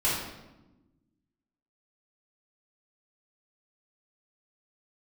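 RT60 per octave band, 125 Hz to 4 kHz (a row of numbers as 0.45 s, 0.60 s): 1.7 s, 1.7 s, 1.1 s, 0.95 s, 0.80 s, 0.75 s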